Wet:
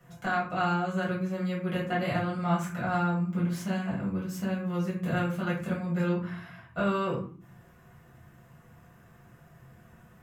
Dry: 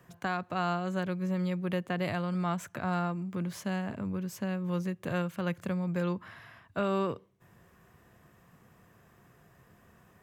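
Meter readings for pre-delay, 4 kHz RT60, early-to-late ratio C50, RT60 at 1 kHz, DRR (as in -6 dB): 4 ms, 0.30 s, 5.5 dB, 0.45 s, -7.5 dB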